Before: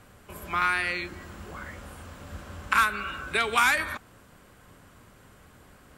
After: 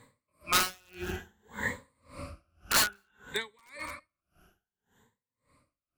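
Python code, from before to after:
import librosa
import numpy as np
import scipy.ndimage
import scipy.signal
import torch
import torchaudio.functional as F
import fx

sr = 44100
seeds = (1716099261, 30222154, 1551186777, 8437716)

y = fx.spec_ripple(x, sr, per_octave=1.0, drift_hz=0.59, depth_db=17)
y = fx.doppler_pass(y, sr, speed_mps=9, closest_m=3.5, pass_at_s=1.52)
y = (np.mod(10.0 ** (24.0 / 20.0) * y + 1.0, 2.0) - 1.0) / 10.0 ** (24.0 / 20.0)
y = y + 10.0 ** (-18.0 / 20.0) * np.pad(y, (int(212 * sr / 1000.0), 0))[:len(y)]
y = y * 10.0 ** (-36 * (0.5 - 0.5 * np.cos(2.0 * np.pi * 1.8 * np.arange(len(y)) / sr)) / 20.0)
y = F.gain(torch.from_numpy(y), 6.5).numpy()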